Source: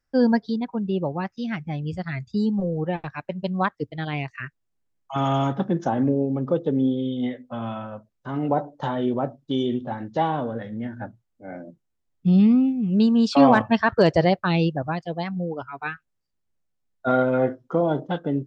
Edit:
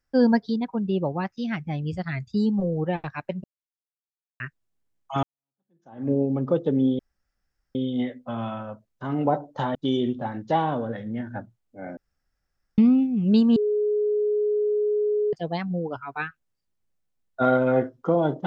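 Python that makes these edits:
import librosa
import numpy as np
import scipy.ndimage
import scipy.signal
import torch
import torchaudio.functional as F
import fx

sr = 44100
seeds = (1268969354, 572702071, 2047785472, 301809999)

y = fx.edit(x, sr, fx.silence(start_s=3.44, length_s=0.96),
    fx.fade_in_span(start_s=5.23, length_s=0.89, curve='exp'),
    fx.insert_room_tone(at_s=6.99, length_s=0.76),
    fx.cut(start_s=8.99, length_s=0.42),
    fx.room_tone_fill(start_s=11.63, length_s=0.81),
    fx.bleep(start_s=13.22, length_s=1.77, hz=419.0, db=-20.0), tone=tone)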